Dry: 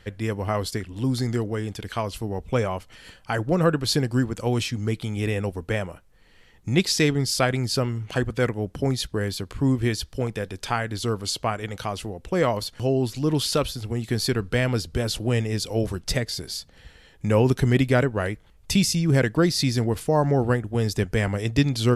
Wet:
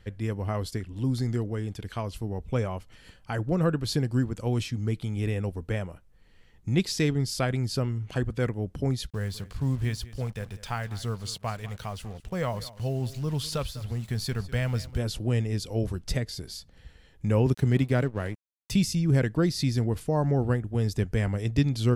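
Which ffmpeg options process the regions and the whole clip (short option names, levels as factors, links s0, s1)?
-filter_complex "[0:a]asettb=1/sr,asplit=3[s0][s1][s2];[s0]atrim=end=9.104[s3];[s1]atrim=start=9.1:end=14.98,asetpts=PTS-STARTPTS,afade=t=in:d=0.004:c=qsin,afade=t=out:st=5.876:d=0.004:c=qsin,equalizer=f=320:t=o:w=0.73:g=-11.5,acrusher=bits=6:mix=0:aa=0.5,aecho=1:1:199:0.133,atrim=end_sample=259308[s4];[s2]atrim=start=14.976[s5];[s3][s4]acrossfade=d=0.004:c1=hsin:c2=qsin[s6];[s6][s5]acrossfade=d=0.004:c1=qsin:c2=hsin,asettb=1/sr,asplit=3[s7][s8][s9];[s7]atrim=end=17.464[s10];[s8]atrim=start=17.46:end=18.73,asetpts=PTS-STARTPTS,afade=t=in:d=0.004:c=qsin,afade=t=out:st=1.266:d=0.004:c=qsin,highpass=f=68:w=0.5412,highpass=f=68:w=1.3066,aeval=exprs='sgn(val(0))*max(abs(val(0))-0.0112,0)':c=same[s11];[s9]atrim=start=18.726[s12];[s10][s11]acrossfade=d=0.004:c1=hsin:c2=qsin[s13];[s13][s12]acrossfade=d=0.004:c1=qsin:c2=hsin,deesser=0.35,lowshelf=f=260:g=8,volume=0.398"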